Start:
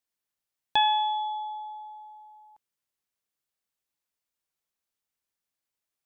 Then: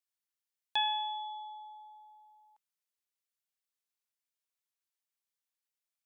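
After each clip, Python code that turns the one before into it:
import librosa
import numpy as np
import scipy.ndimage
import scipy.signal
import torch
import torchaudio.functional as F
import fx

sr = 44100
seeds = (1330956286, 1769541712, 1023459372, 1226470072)

y = fx.highpass(x, sr, hz=1400.0, slope=6)
y = y * librosa.db_to_amplitude(-4.5)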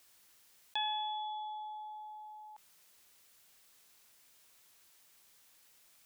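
y = fx.env_flatten(x, sr, amount_pct=50)
y = y * librosa.db_to_amplitude(-5.5)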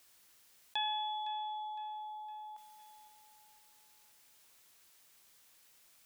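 y = fx.echo_feedback(x, sr, ms=510, feedback_pct=45, wet_db=-16.5)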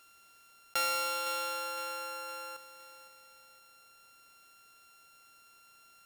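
y = np.r_[np.sort(x[:len(x) // 32 * 32].reshape(-1, 32), axis=1).ravel(), x[len(x) // 32 * 32:]]
y = y * librosa.db_to_amplitude(4.0)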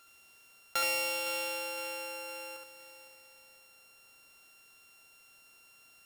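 y = x + 10.0 ** (-3.5 / 20.0) * np.pad(x, (int(70 * sr / 1000.0), 0))[:len(x)]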